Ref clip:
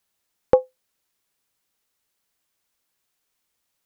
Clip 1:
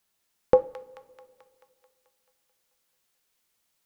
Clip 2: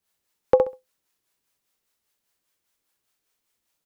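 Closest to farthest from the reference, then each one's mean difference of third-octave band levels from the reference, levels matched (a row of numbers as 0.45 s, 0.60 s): 1, 2; 2.5 dB, 6.0 dB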